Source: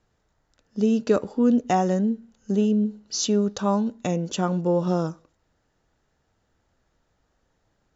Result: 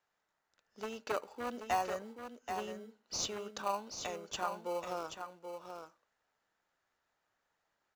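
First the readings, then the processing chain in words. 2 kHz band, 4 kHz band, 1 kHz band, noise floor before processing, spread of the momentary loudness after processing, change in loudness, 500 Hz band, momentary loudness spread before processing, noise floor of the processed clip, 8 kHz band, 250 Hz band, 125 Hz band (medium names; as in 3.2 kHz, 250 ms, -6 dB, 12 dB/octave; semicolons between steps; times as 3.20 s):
-4.5 dB, -8.0 dB, -8.0 dB, -72 dBFS, 13 LU, -16.0 dB, -15.0 dB, 6 LU, -84 dBFS, no reading, -27.0 dB, -28.5 dB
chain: one-sided wavefolder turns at -14.5 dBFS; high-pass 1.1 kHz 12 dB/octave; treble shelf 2.8 kHz -10 dB; in parallel at -9.5 dB: sample-and-hold 25×; on the sum: delay 781 ms -7.5 dB; trim -2.5 dB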